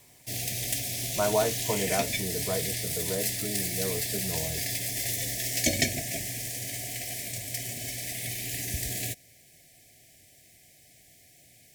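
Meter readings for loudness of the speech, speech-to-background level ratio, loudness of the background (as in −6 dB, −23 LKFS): −33.0 LKFS, −3.5 dB, −29.5 LKFS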